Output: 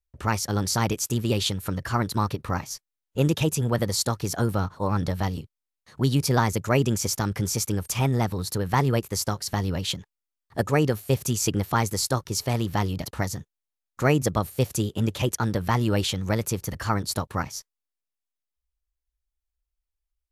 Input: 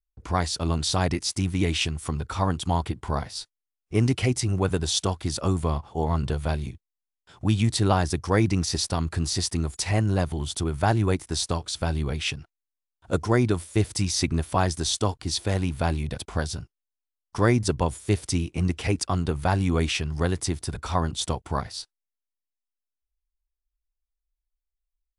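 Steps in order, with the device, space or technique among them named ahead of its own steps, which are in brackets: nightcore (tape speed +24%)

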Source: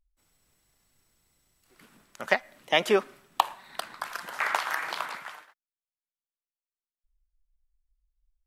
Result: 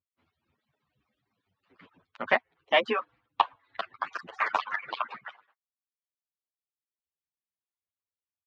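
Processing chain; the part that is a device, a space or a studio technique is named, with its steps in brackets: harmonic-percussive separation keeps percussive; reverb removal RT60 1.6 s; barber-pole flanger into a guitar amplifier (endless flanger 8.7 ms -0.48 Hz; saturation -16 dBFS, distortion -15 dB; cabinet simulation 85–3400 Hz, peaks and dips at 90 Hz +4 dB, 250 Hz +3 dB, 1.1 kHz +4 dB); 4.07–4.59 s: resonant high shelf 4.6 kHz +9.5 dB, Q 1.5; trim +5 dB

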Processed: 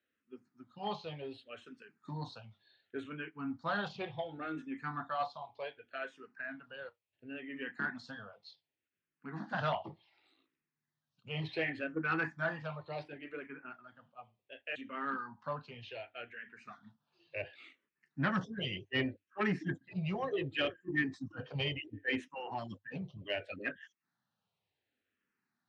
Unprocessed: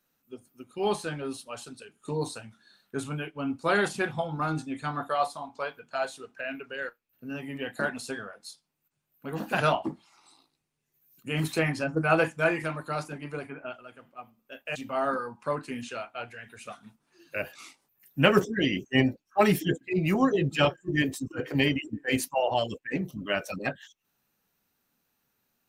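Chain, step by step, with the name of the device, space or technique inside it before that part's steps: barber-pole phaser into a guitar amplifier (barber-pole phaser -0.68 Hz; saturation -18.5 dBFS, distortion -18 dB; cabinet simulation 86–4500 Hz, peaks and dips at 100 Hz +7 dB, 1.8 kHz +6 dB, 3.2 kHz +3 dB); trim -6.5 dB

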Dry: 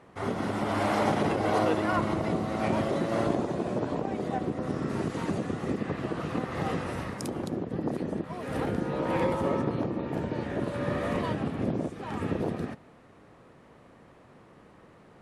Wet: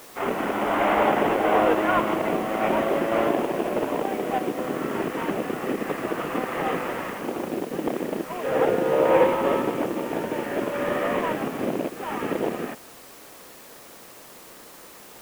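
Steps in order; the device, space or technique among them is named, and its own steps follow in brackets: army field radio (band-pass 310–3000 Hz; CVSD coder 16 kbps; white noise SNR 22 dB); 8.44–9.24 s: ten-band graphic EQ 125 Hz +5 dB, 250 Hz -4 dB, 500 Hz +8 dB; trim +7.5 dB

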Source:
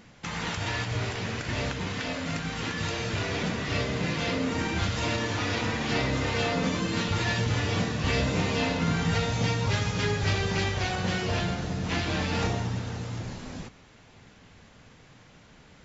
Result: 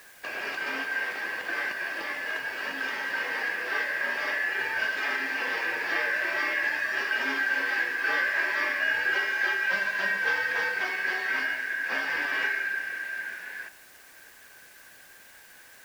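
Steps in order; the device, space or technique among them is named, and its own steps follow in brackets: split-band scrambled radio (four frequency bands reordered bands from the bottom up 2143; band-pass 350–3100 Hz; white noise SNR 25 dB)

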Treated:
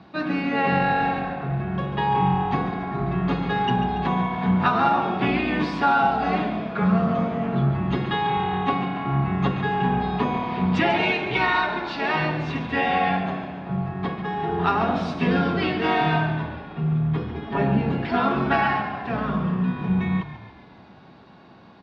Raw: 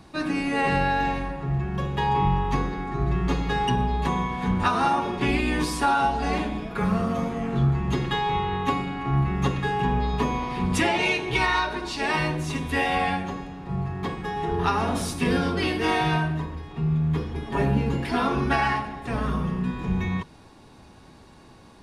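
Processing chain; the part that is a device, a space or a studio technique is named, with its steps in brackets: frequency-shifting delay pedal into a guitar cabinet (frequency-shifting echo 141 ms, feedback 59%, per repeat -37 Hz, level -11 dB; cabinet simulation 110–4100 Hz, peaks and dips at 190 Hz +6 dB, 690 Hz +5 dB, 1.4 kHz +4 dB)

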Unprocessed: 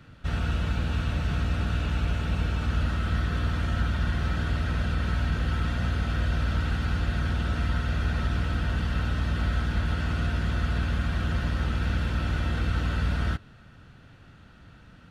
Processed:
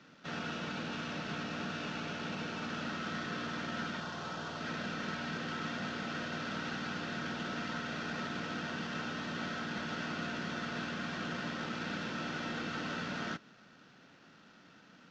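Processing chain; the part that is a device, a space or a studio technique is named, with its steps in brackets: early wireless headset (high-pass 190 Hz 24 dB/octave; CVSD coder 32 kbps); 4.00–4.61 s: graphic EQ 250/1000/2000 Hz -7/+4/-8 dB; trim -3.5 dB

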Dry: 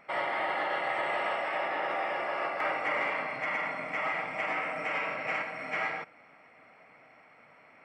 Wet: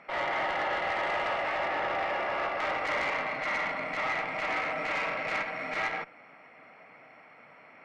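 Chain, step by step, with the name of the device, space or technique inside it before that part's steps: valve radio (band-pass 100–5500 Hz; valve stage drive 27 dB, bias 0.3; transformer saturation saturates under 610 Hz); trim +4.5 dB

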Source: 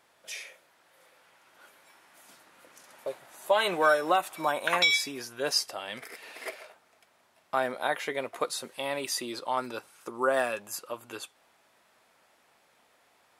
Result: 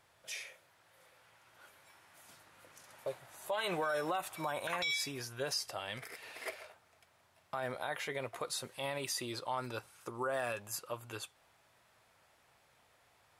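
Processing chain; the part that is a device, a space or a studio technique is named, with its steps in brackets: car stereo with a boomy subwoofer (resonant low shelf 160 Hz +10 dB, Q 1.5; peak limiter -23 dBFS, peak gain reduction 11.5 dB); trim -3.5 dB

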